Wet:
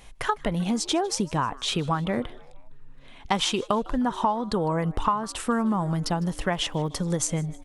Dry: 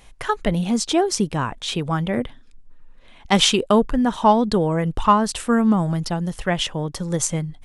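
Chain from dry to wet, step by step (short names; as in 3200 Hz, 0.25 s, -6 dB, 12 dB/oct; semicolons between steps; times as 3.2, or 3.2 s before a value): dynamic EQ 1000 Hz, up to +8 dB, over -34 dBFS, Q 1.6; compressor 6:1, threshold -22 dBFS, peak gain reduction 17.5 dB; 6.09–6.93 crackle 54/s -46 dBFS; frequency-shifting echo 0.154 s, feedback 51%, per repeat +130 Hz, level -22.5 dB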